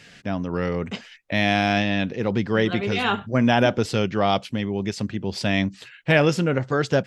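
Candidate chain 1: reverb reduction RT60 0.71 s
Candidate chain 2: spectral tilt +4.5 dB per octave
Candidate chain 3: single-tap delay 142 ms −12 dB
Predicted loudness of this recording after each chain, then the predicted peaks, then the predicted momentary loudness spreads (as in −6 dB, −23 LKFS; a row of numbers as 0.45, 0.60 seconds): −24.0, −22.0, −22.5 LKFS; −5.0, −2.0, −4.0 dBFS; 10, 13, 9 LU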